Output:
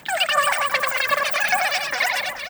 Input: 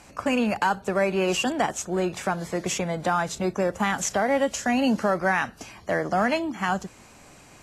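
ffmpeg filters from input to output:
-filter_complex "[0:a]equalizer=f=125:t=o:w=1:g=-5,equalizer=f=500:t=o:w=1:g=4,equalizer=f=2k:t=o:w=1:g=-5,equalizer=f=8k:t=o:w=1:g=11,aphaser=in_gain=1:out_gain=1:delay=4.5:decay=0.6:speed=0.86:type=sinusoidal,asetrate=134946,aresample=44100,asplit=2[a][b];[b]aecho=0:1:90|225|427.5|731.2|1187:0.631|0.398|0.251|0.158|0.1[c];[a][c]amix=inputs=2:normalize=0,volume=-1.5dB"

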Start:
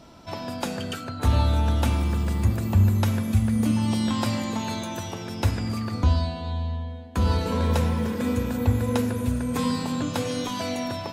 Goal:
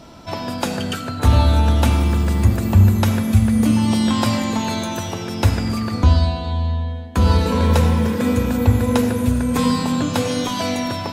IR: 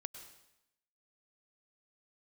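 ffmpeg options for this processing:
-filter_complex "[0:a]asplit=2[a][b];[1:a]atrim=start_sample=2205,asetrate=57330,aresample=44100[c];[b][c]afir=irnorm=-1:irlink=0,volume=8dB[d];[a][d]amix=inputs=2:normalize=0"

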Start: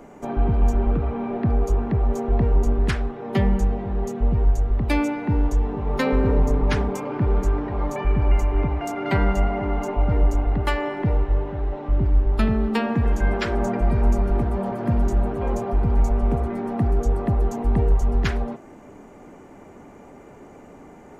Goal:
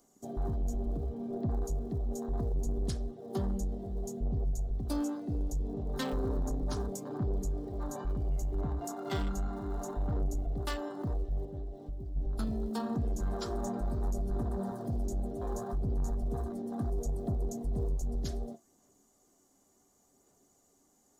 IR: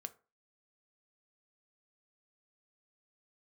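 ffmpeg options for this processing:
-filter_complex "[0:a]afwtdn=0.0501,asettb=1/sr,asplit=3[a][b][c];[a]atrim=end=9.224[d];[b]atrim=start=9.22:end=9.74,asetpts=PTS-STARTPTS,afade=t=in:d=0.004:c=qsin,afade=t=out:st=0.516:d=0.004:c=qsin,equalizer=f=620:w=2.1:g=-8.5[e];[c]atrim=start=9.736[f];[d][e]acrossfade=d=0.004:c1=hsin:c2=qsin[g];[g][f]acrossfade=d=0.004:c1=qsin:c2=hsin,asplit=3[h][i][j];[h]afade=t=out:st=11.45:d=0.02[k];[i]acompressor=threshold=-26dB:ratio=6,afade=t=in:st=11.45:d=0.02,afade=t=out:st=12.15:d=0.02[l];[j]afade=t=in:st=12.15:d=0.02[m];[k][l][m]amix=inputs=3:normalize=0,aphaser=in_gain=1:out_gain=1:delay=3.8:decay=0.24:speed=0.69:type=sinusoidal,asoftclip=type=tanh:threshold=-14dB,aexciter=amount=9.4:drive=8.4:freq=3.7k[n];[1:a]atrim=start_sample=2205,asetrate=70560,aresample=44100[o];[n][o]afir=irnorm=-1:irlink=0,volume=-3dB"

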